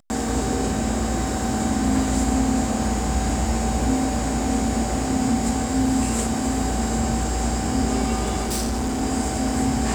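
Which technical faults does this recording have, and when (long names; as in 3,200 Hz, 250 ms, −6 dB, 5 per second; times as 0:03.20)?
0:08.42–0:09.03: clipping −21 dBFS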